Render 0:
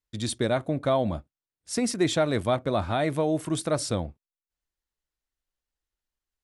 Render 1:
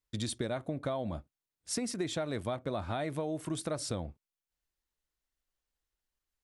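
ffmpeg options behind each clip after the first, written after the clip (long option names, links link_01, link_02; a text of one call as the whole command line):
ffmpeg -i in.wav -af "acompressor=threshold=-32dB:ratio=6" out.wav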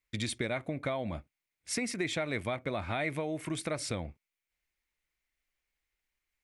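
ffmpeg -i in.wav -af "equalizer=frequency=2200:width=2.5:gain=14.5" out.wav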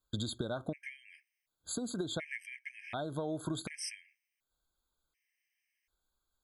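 ffmpeg -i in.wav -af "acompressor=threshold=-37dB:ratio=6,afftfilt=real='re*gt(sin(2*PI*0.68*pts/sr)*(1-2*mod(floor(b*sr/1024/1600),2)),0)':imag='im*gt(sin(2*PI*0.68*pts/sr)*(1-2*mod(floor(b*sr/1024/1600),2)),0)':win_size=1024:overlap=0.75,volume=4.5dB" out.wav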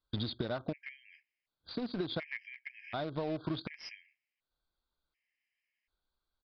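ffmpeg -i in.wav -filter_complex "[0:a]asplit=2[link_01][link_02];[link_02]acrusher=bits=5:mix=0:aa=0.000001,volume=-8dB[link_03];[link_01][link_03]amix=inputs=2:normalize=0,aresample=11025,aresample=44100,volume=-2dB" out.wav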